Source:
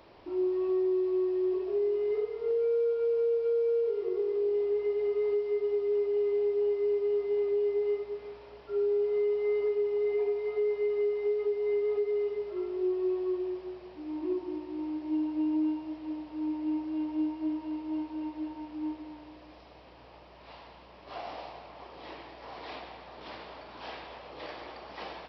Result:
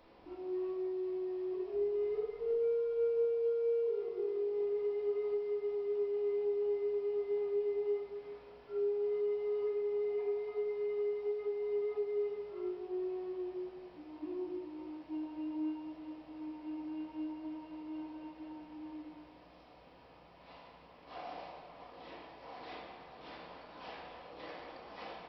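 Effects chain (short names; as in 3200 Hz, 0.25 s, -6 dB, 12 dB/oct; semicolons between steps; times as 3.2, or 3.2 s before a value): 1.74–3.25 low shelf 81 Hz +12 dB; reverb RT60 0.50 s, pre-delay 4 ms, DRR 1 dB; gain -8 dB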